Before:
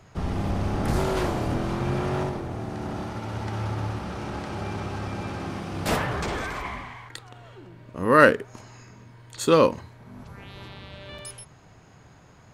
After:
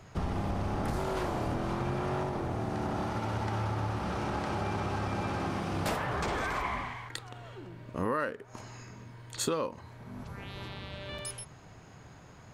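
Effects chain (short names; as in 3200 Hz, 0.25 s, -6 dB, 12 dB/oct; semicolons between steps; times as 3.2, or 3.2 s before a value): dynamic EQ 930 Hz, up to +4 dB, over -39 dBFS, Q 0.86; compressor 16:1, threshold -28 dBFS, peak gain reduction 21.5 dB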